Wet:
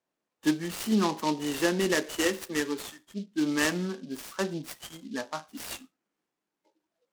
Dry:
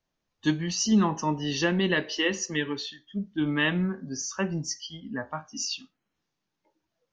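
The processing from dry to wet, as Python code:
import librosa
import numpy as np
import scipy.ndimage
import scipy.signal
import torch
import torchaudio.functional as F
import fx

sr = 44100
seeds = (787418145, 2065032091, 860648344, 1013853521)

y = fx.bandpass_edges(x, sr, low_hz=250.0, high_hz=4000.0)
y = fx.peak_eq(y, sr, hz=340.0, db=3.5, octaves=1.8)
y = fx.noise_mod_delay(y, sr, seeds[0], noise_hz=3800.0, depth_ms=0.054)
y = F.gain(torch.from_numpy(y), -1.5).numpy()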